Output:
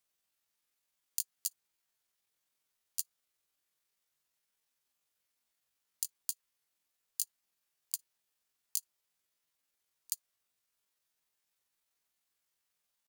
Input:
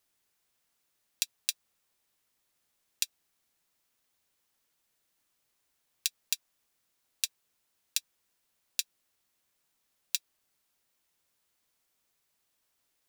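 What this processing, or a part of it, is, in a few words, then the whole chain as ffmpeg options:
chipmunk voice: -af "lowshelf=f=430:g=-4.5,bandreject=f=146.7:t=h:w=4,bandreject=f=293.4:t=h:w=4,bandreject=f=440.1:t=h:w=4,bandreject=f=586.8:t=h:w=4,asetrate=78577,aresample=44100,atempo=0.561231,volume=-2.5dB"

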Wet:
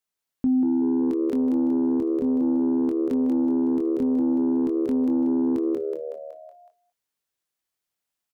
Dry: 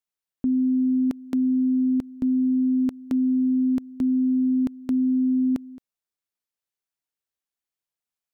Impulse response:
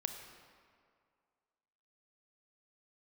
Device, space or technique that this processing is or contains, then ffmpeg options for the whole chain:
soft clipper into limiter: -filter_complex "[0:a]asplit=2[a][b];[b]adelay=23,volume=-6dB[c];[a][c]amix=inputs=2:normalize=0,asplit=7[d][e][f][g][h][i][j];[e]adelay=186,afreqshift=75,volume=-4dB[k];[f]adelay=372,afreqshift=150,volume=-10.6dB[l];[g]adelay=558,afreqshift=225,volume=-17.1dB[m];[h]adelay=744,afreqshift=300,volume=-23.7dB[n];[i]adelay=930,afreqshift=375,volume=-30.2dB[o];[j]adelay=1116,afreqshift=450,volume=-36.8dB[p];[d][k][l][m][n][o][p]amix=inputs=7:normalize=0,asoftclip=type=tanh:threshold=-11dB,alimiter=limit=-20dB:level=0:latency=1:release=493,volume=3dB"

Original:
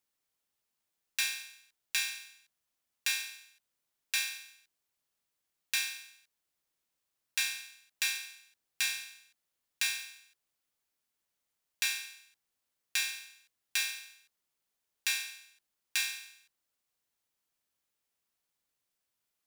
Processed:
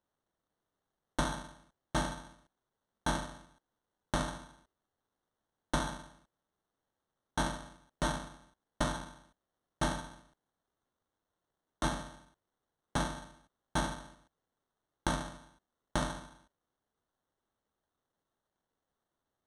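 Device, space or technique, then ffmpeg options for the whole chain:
crushed at another speed: -af "asetrate=88200,aresample=44100,acrusher=samples=9:mix=1:aa=0.000001,asetrate=22050,aresample=44100"

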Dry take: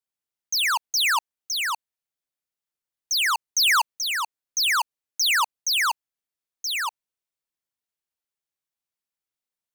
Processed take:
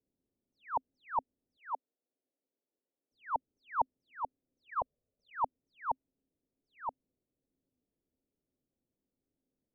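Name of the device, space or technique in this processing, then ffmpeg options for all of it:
under water: -filter_complex "[0:a]lowpass=f=500:w=0.5412,lowpass=f=500:w=1.3066,equalizer=f=260:t=o:w=0.27:g=10.5,asettb=1/sr,asplit=3[a][b][c];[a]atrim=end=1.574[d];[b]atrim=start=1.57:end=3.12,asetpts=PTS-STARTPTS,afade=t=in:d=0.004:c=qsin,afade=t=out:st=1.546:d=0.004:c=qsin,highpass=430[e];[c]atrim=start=3.116[f];[d][e]acrossfade=d=0.004:c1=hsin:c2=qsin[g];[g][f]acrossfade=d=0.004:c1=qsin:c2=hsin,asettb=1/sr,asplit=3[h][i][j];[h]atrim=end=4.694[k];[i]atrim=start=4.69:end=5.32,asetpts=PTS-STARTPTS,afade=t=in:d=0.004:c=qsin,afade=t=out:st=0.626:d=0.004:c=qsin,aecho=1:1:1.7:0.79,atrim=end_sample=27783[l];[j]atrim=start=5.316[m];[k][l]acrossfade=d=0.004:c1=hsin:c2=qsin[n];[n][m]acrossfade=d=0.004:c1=qsin:c2=hsin,volume=16dB"

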